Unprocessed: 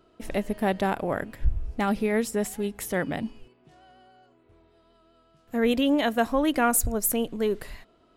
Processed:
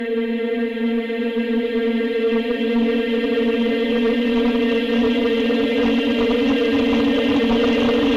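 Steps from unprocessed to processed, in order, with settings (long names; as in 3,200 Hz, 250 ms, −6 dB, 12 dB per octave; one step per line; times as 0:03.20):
spectral dynamics exaggerated over time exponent 1.5
extreme stretch with random phases 25×, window 1.00 s, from 0:05.39
sine wavefolder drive 7 dB, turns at −13 dBFS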